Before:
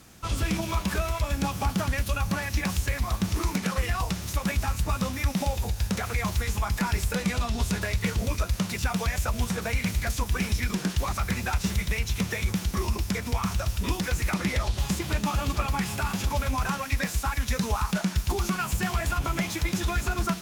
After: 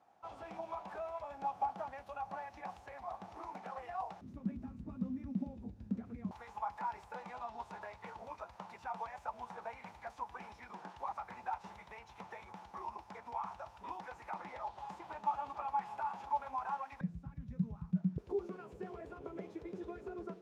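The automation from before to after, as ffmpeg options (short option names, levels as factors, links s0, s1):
-af "asetnsamples=n=441:p=0,asendcmd='4.21 bandpass f 240;6.31 bandpass f 860;17.01 bandpass f 160;18.18 bandpass f 430',bandpass=f=780:t=q:w=6:csg=0"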